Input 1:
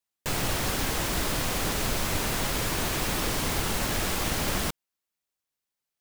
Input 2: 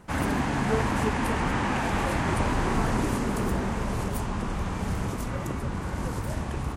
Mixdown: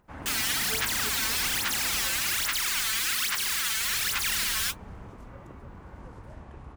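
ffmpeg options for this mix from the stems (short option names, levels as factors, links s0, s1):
-filter_complex "[0:a]highpass=f=1400:w=0.5412,highpass=f=1400:w=1.3066,aphaser=in_gain=1:out_gain=1:delay=4.6:decay=0.77:speed=1.2:type=sinusoidal,volume=1[s0];[1:a]lowpass=f=1500:p=1,acompressor=mode=upward:threshold=0.00224:ratio=2.5,volume=0.794,afade=t=out:st=1.87:d=0.69:silence=0.334965,afade=t=in:st=3.7:d=0.59:silence=0.354813[s1];[s0][s1]amix=inputs=2:normalize=0,equalizer=f=170:w=0.65:g=-5"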